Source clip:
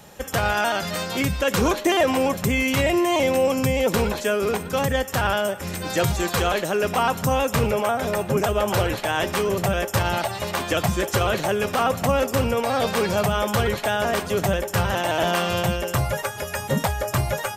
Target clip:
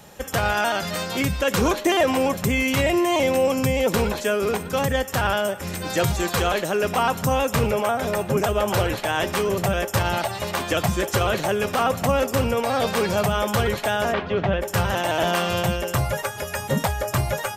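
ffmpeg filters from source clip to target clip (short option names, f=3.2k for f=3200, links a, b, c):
-filter_complex "[0:a]asplit=3[a][b][c];[a]afade=t=out:st=14.12:d=0.02[d];[b]lowpass=f=3.4k:w=0.5412,lowpass=f=3.4k:w=1.3066,afade=t=in:st=14.12:d=0.02,afade=t=out:st=14.61:d=0.02[e];[c]afade=t=in:st=14.61:d=0.02[f];[d][e][f]amix=inputs=3:normalize=0"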